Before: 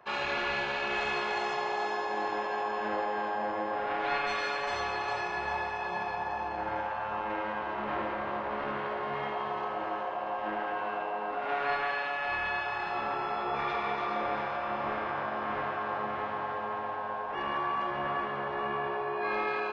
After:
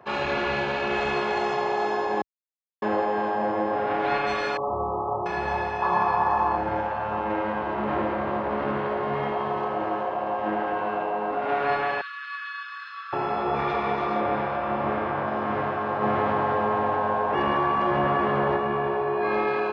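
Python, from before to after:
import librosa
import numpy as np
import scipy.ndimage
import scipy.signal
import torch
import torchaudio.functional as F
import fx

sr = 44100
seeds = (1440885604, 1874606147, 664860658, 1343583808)

y = fx.brickwall_lowpass(x, sr, high_hz=1300.0, at=(4.57, 5.26))
y = fx.peak_eq(y, sr, hz=1100.0, db=13.0, octaves=0.64, at=(5.82, 6.58))
y = fx.cheby_ripple_highpass(y, sr, hz=1100.0, ripple_db=9, at=(12.01, 13.13))
y = fx.lowpass(y, sr, hz=4600.0, slope=12, at=(14.2, 15.27))
y = fx.env_flatten(y, sr, amount_pct=50, at=(16.01, 18.56), fade=0.02)
y = fx.edit(y, sr, fx.silence(start_s=2.22, length_s=0.6), tone=tone)
y = scipy.signal.sosfilt(scipy.signal.butter(2, 54.0, 'highpass', fs=sr, output='sos'), y)
y = fx.tilt_shelf(y, sr, db=5.5, hz=680.0)
y = y * 10.0 ** (7.0 / 20.0)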